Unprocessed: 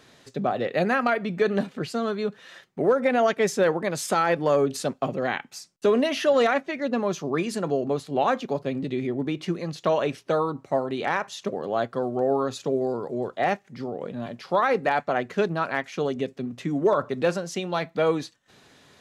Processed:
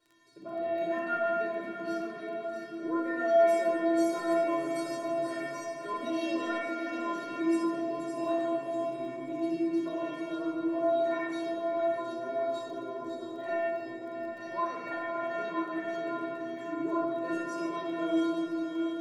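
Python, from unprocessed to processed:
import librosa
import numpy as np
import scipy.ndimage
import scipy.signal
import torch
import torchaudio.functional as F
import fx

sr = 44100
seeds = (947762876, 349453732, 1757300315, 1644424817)

y = fx.reverse_delay(x, sr, ms=558, wet_db=-6.5)
y = fx.low_shelf(y, sr, hz=450.0, db=7.5)
y = fx.stiff_resonator(y, sr, f0_hz=330.0, decay_s=0.58, stiffness=0.008)
y = fx.echo_diffused(y, sr, ms=678, feedback_pct=46, wet_db=-9.5)
y = fx.room_shoebox(y, sr, seeds[0], volume_m3=3300.0, walls='mixed', distance_m=4.8)
y = fx.dmg_crackle(y, sr, seeds[1], per_s=14.0, level_db=-49.0)
y = fx.low_shelf(y, sr, hz=120.0, db=-12.0)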